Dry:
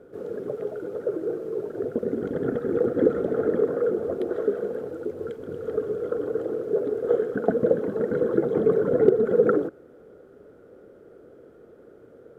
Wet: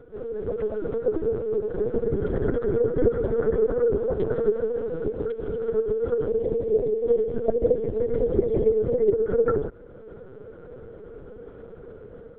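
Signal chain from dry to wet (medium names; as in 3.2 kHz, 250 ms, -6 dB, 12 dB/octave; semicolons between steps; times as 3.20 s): time-frequency box 6.27–9.12 s, 700–1900 Hz -12 dB; level rider gain up to 7 dB; LPC vocoder at 8 kHz pitch kept; in parallel at +2 dB: compression, threshold -28 dBFS, peak gain reduction 17 dB; on the sum: trim -6.5 dB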